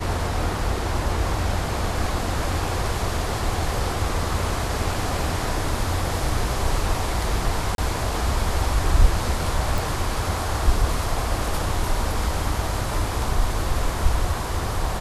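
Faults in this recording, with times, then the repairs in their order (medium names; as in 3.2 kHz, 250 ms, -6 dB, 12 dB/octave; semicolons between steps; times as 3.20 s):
7.75–7.78 s: dropout 32 ms
9.78 s: pop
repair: de-click; interpolate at 7.75 s, 32 ms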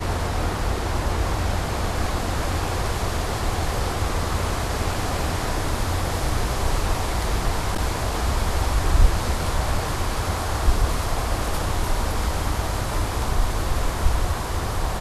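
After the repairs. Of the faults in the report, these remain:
nothing left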